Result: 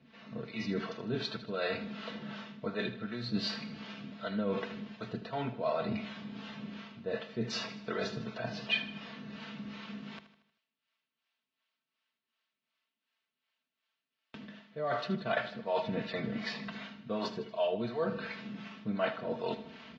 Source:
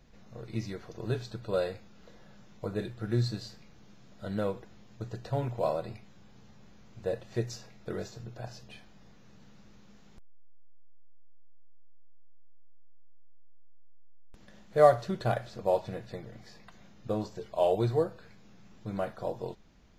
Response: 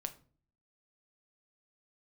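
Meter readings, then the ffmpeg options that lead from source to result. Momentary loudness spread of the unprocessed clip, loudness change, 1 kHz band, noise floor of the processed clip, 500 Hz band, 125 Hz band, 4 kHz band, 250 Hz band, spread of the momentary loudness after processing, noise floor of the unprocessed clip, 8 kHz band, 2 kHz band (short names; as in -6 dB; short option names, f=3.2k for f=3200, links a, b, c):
17 LU, -5.0 dB, -4.5 dB, under -85 dBFS, -5.5 dB, -7.5 dB, +8.0 dB, +1.5 dB, 12 LU, -54 dBFS, -3.0 dB, +7.0 dB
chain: -filter_complex "[0:a]areverse,acompressor=threshold=-43dB:ratio=6,areverse,acrossover=split=460[a][b];[a]aeval=exprs='val(0)*(1-0.7/2+0.7/2*cos(2*PI*2.7*n/s))':c=same[c];[b]aeval=exprs='val(0)*(1-0.7/2-0.7/2*cos(2*PI*2.7*n/s))':c=same[d];[c][d]amix=inputs=2:normalize=0,aecho=1:1:4.5:0.76,asplit=2[e][f];[f]aecho=0:1:78|156|234|312|390:0.211|0.108|0.055|0.028|0.0143[g];[e][g]amix=inputs=2:normalize=0,dynaudnorm=f=120:g=5:m=11.5dB,highpass=f=120:w=0.5412,highpass=f=120:w=1.3066,equalizer=f=180:t=q:w=4:g=-9,equalizer=f=440:t=q:w=4:g=-9,equalizer=f=780:t=q:w=4:g=-8,equalizer=f=2.8k:t=q:w=4:g=4,lowpass=f=4k:w=0.5412,lowpass=f=4k:w=1.3066,volume=6.5dB"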